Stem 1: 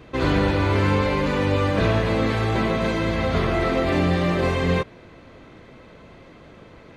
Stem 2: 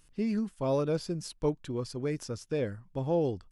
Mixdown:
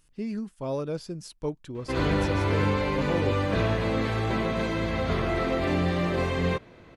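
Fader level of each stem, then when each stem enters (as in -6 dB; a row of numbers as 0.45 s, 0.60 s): -5.0 dB, -2.0 dB; 1.75 s, 0.00 s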